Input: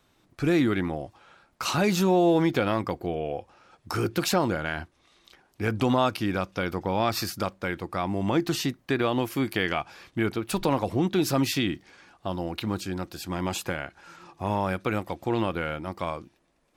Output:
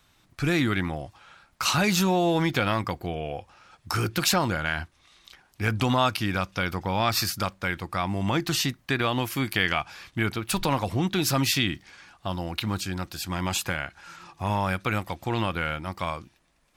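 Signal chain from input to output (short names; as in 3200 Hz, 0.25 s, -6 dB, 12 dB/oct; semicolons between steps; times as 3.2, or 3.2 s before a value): bell 390 Hz -10 dB 2.1 oct; gain +5.5 dB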